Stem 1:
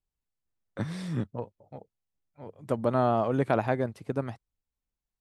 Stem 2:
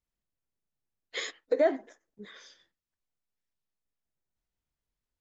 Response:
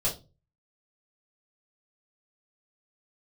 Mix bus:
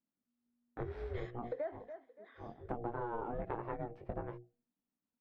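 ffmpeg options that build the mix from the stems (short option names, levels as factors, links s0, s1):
-filter_complex "[0:a]bandreject=f=60:t=h:w=6,bandreject=f=120:t=h:w=6,bandreject=f=180:t=h:w=6,bandreject=f=240:t=h:w=6,bandreject=f=300:t=h:w=6,bandreject=f=360:t=h:w=6,bandreject=f=420:t=h:w=6,bandreject=f=480:t=h:w=6,bandreject=f=540:t=h:w=6,flanger=delay=16.5:depth=5.1:speed=1.4,aeval=exprs='val(0)*sin(2*PI*240*n/s)':c=same,volume=1.26[s0];[1:a]highpass=490,volume=0.501,asplit=2[s1][s2];[s2]volume=0.133,aecho=0:1:286|572|858|1144|1430:1|0.34|0.116|0.0393|0.0134[s3];[s0][s1][s3]amix=inputs=3:normalize=0,lowpass=1600,acompressor=threshold=0.0158:ratio=6"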